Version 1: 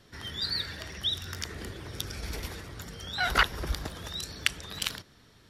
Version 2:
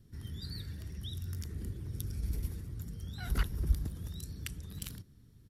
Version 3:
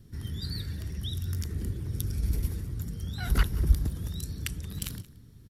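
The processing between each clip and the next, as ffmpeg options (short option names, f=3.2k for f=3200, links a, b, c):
-af "firequalizer=gain_entry='entry(110,0);entry(620,-23);entry(3500,-22);entry(11000,-7)':delay=0.05:min_phase=1,volume=3.5dB"
-af "aecho=1:1:178:0.1,volume=7dB"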